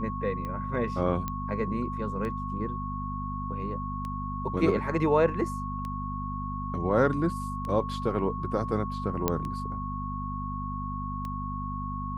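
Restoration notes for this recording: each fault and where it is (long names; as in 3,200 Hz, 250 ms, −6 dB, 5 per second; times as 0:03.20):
mains hum 50 Hz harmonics 5 −35 dBFS
scratch tick 33 1/3 rpm −24 dBFS
whistle 1,100 Hz −35 dBFS
0:01.28: click −18 dBFS
0:09.28: click −10 dBFS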